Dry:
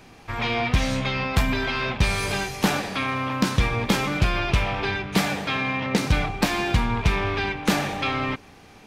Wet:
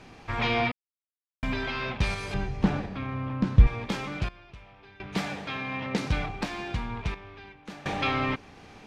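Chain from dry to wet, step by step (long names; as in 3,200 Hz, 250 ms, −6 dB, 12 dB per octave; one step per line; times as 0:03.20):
0:02.34–0:03.67: RIAA equalisation playback
sample-and-hold tremolo 1.4 Hz, depth 100%
high-frequency loss of the air 54 metres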